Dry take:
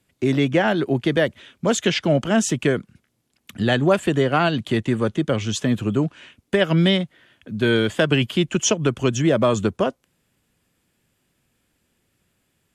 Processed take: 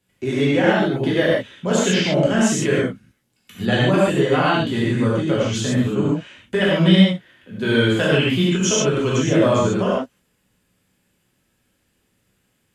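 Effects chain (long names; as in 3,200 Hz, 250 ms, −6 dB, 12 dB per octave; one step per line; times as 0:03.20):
reverb whose tail is shaped and stops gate 170 ms flat, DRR −7.5 dB
level −6 dB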